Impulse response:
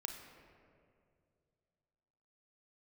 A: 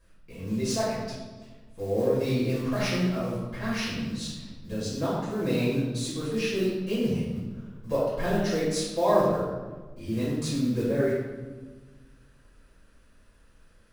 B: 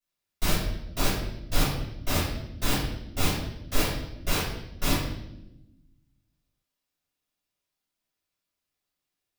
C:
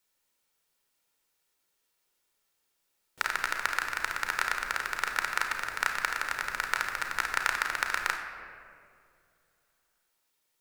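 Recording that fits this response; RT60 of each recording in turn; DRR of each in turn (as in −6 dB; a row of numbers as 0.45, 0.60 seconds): C; 1.4, 0.90, 2.4 seconds; −9.5, −11.5, 4.0 decibels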